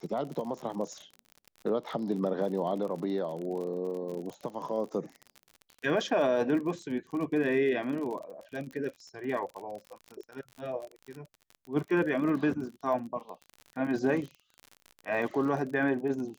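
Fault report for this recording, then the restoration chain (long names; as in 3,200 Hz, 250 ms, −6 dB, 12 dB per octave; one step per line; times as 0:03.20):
surface crackle 45 per second −37 dBFS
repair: click removal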